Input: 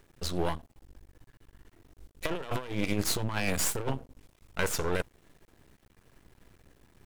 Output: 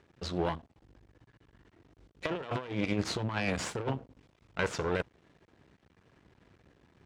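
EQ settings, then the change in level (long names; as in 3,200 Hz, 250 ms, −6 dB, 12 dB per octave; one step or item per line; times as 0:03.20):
high-pass filter 77 Hz
high-frequency loss of the air 120 metres
0.0 dB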